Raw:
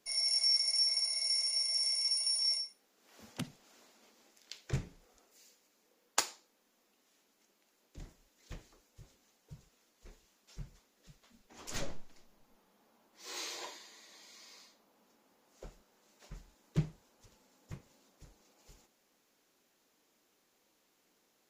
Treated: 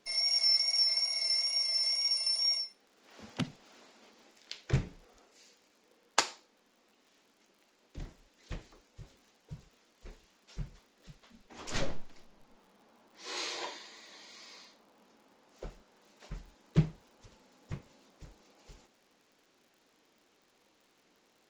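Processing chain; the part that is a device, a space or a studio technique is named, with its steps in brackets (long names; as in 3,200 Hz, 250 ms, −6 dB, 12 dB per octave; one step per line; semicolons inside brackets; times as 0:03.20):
lo-fi chain (low-pass filter 5,200 Hz 12 dB per octave; tape wow and flutter 28 cents; surface crackle 77 per second −61 dBFS)
level +6 dB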